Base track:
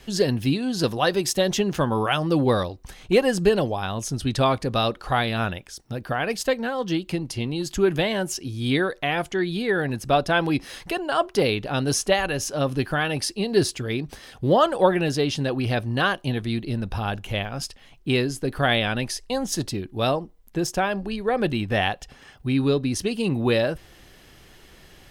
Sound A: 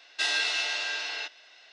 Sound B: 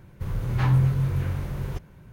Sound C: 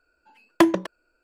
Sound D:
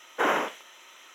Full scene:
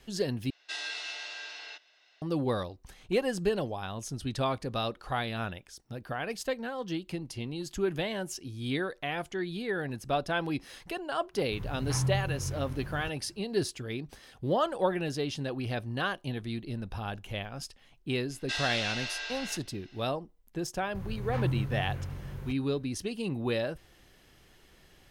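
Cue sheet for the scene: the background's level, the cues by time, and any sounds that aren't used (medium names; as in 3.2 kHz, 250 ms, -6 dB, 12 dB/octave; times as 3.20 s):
base track -9.5 dB
0.50 s: replace with A -10 dB
11.31 s: add B -10 dB, fades 0.05 s
18.30 s: add A -6 dB
20.74 s: add B -10 dB
not used: C, D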